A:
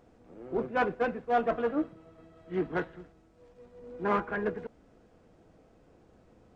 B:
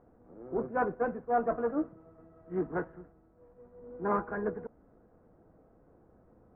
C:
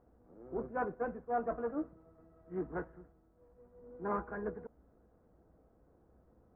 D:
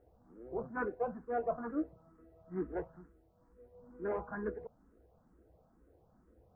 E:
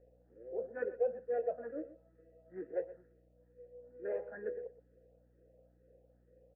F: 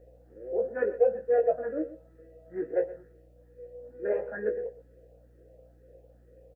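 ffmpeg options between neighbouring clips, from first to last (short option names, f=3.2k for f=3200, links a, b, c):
-af "lowpass=f=1.5k:w=0.5412,lowpass=f=1.5k:w=1.3066,volume=-1.5dB"
-af "equalizer=f=60:w=4.9:g=14,volume=-6dB"
-filter_complex "[0:a]asplit=2[a][b];[b]afreqshift=2.2[c];[a][c]amix=inputs=2:normalize=1,volume=3dB"
-filter_complex "[0:a]asplit=3[a][b][c];[a]bandpass=f=530:t=q:w=8,volume=0dB[d];[b]bandpass=f=1.84k:t=q:w=8,volume=-6dB[e];[c]bandpass=f=2.48k:t=q:w=8,volume=-9dB[f];[d][e][f]amix=inputs=3:normalize=0,aeval=exprs='val(0)+0.000158*(sin(2*PI*60*n/s)+sin(2*PI*2*60*n/s)/2+sin(2*PI*3*60*n/s)/3+sin(2*PI*4*60*n/s)/4+sin(2*PI*5*60*n/s)/5)':c=same,aecho=1:1:123:0.158,volume=8.5dB"
-filter_complex "[0:a]asplit=2[a][b];[b]adelay=19,volume=-5.5dB[c];[a][c]amix=inputs=2:normalize=0,volume=9dB"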